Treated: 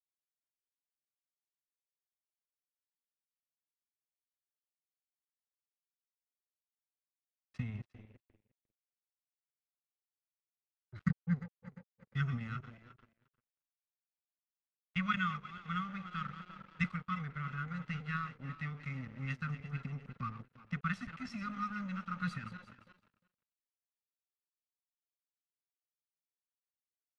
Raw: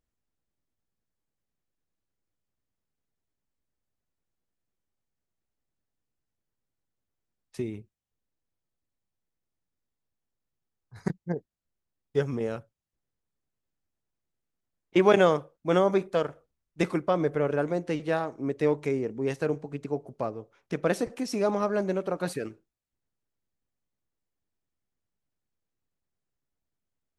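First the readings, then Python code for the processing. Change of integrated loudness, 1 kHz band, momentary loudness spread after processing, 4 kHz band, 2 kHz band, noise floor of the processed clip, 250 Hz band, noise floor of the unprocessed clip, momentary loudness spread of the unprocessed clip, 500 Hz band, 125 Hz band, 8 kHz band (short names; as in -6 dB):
-11.5 dB, -8.5 dB, 15 LU, -9.0 dB, -4.5 dB, under -85 dBFS, -10.0 dB, -85 dBFS, 13 LU, -36.0 dB, -3.0 dB, n/a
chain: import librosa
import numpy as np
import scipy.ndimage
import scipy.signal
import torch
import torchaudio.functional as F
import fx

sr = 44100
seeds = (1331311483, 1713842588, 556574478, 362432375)

y = fx.reverse_delay_fb(x, sr, ms=175, feedback_pct=64, wet_db=-12.0)
y = fx.dynamic_eq(y, sr, hz=230.0, q=2.1, threshold_db=-40.0, ratio=4.0, max_db=-4)
y = fx.rider(y, sr, range_db=4, speed_s=0.5)
y = scipy.signal.sosfilt(scipy.signal.cheby1(5, 1.0, [260.0, 1100.0], 'bandstop', fs=sr, output='sos'), y)
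y = y + 0.86 * np.pad(y, (int(1.5 * sr / 1000.0), 0))[:len(y)]
y = np.sign(y) * np.maximum(np.abs(y) - 10.0 ** (-46.0 / 20.0), 0.0)
y = scipy.signal.sosfilt(scipy.signal.butter(2, 2800.0, 'lowpass', fs=sr, output='sos'), y)
y = y + 10.0 ** (-19.5 / 20.0) * np.pad(y, (int(353 * sr / 1000.0), 0))[:len(y)]
y = F.gain(torch.from_numpy(y), -4.5).numpy()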